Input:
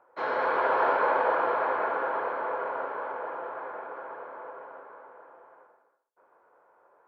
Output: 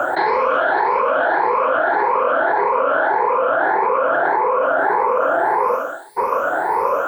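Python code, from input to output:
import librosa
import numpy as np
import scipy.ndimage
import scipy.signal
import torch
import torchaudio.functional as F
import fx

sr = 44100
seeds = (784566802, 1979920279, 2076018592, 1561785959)

y = fx.spec_ripple(x, sr, per_octave=0.86, drift_hz=1.7, depth_db=18)
y = fx.env_flatten(y, sr, amount_pct=100)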